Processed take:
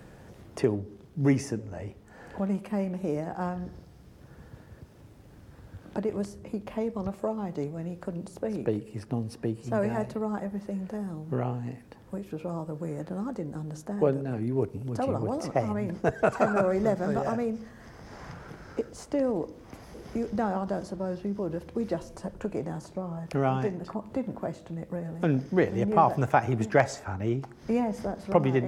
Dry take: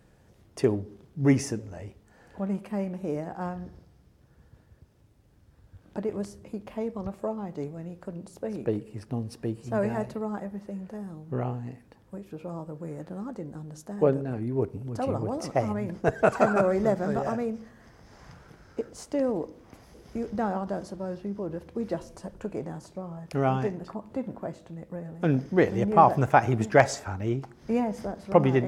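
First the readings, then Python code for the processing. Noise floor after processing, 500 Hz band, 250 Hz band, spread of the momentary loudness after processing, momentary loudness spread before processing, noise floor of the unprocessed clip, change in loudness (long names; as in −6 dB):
−52 dBFS, −1.5 dB, 0.0 dB, 15 LU, 17 LU, −59 dBFS, −1.5 dB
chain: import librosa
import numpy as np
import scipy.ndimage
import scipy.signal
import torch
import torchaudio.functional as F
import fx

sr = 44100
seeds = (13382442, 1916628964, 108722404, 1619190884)

y = fx.band_squash(x, sr, depth_pct=40)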